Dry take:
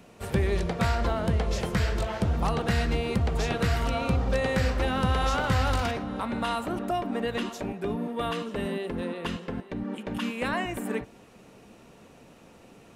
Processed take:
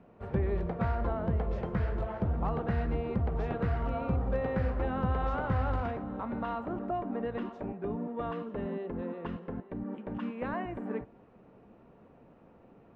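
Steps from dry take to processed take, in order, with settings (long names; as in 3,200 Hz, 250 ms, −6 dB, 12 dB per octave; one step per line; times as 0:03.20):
low-pass filter 1,300 Hz 12 dB per octave
level −4.5 dB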